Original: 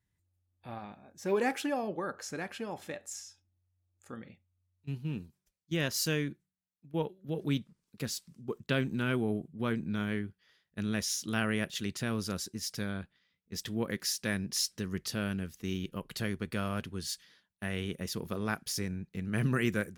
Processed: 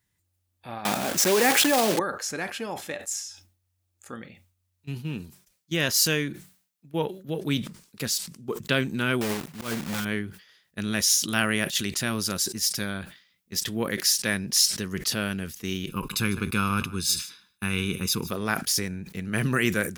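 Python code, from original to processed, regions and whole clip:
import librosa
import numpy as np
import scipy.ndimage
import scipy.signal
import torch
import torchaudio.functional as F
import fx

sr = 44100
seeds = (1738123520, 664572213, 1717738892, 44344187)

y = fx.chain(x, sr, fx.block_float(bits=3),
    fx.highpass(hz=130.0, slope=12),
    fx.env_flatten(amount_pct=70), at=(0.85, 2.0))
y = fx.chain(y, sr, fx.block_float(bits=3),
    fx.auto_swell(attack_ms=138.0),
    fx.transformer_sat(knee_hz=350.0), at=(9.21, 10.06))
y = fx.chain(y, sr, fx.high_shelf(hz=6700.0, db=3.5),
    fx.notch(hz=460.0, q=11.0), at=(10.88, 13.59))
y = fx.chain(y, sr, fx.comb(ms=0.8, depth=0.87),
    fx.echo_single(ms=152, db=-19.5), at=(15.89, 18.31))
y = fx.tilt_eq(y, sr, slope=1.5)
y = fx.sustainer(y, sr, db_per_s=120.0)
y = y * 10.0 ** (7.0 / 20.0)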